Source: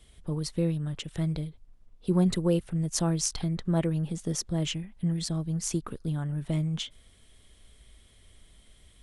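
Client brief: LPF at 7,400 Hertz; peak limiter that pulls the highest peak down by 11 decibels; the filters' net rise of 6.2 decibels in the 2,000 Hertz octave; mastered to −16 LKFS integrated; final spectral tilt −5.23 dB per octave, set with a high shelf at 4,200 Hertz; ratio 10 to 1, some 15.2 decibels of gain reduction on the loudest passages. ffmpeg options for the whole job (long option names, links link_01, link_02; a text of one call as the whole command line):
ffmpeg -i in.wav -af "lowpass=7400,equalizer=frequency=2000:width_type=o:gain=8.5,highshelf=frequency=4200:gain=-3,acompressor=threshold=-35dB:ratio=10,volume=26.5dB,alimiter=limit=-6.5dB:level=0:latency=1" out.wav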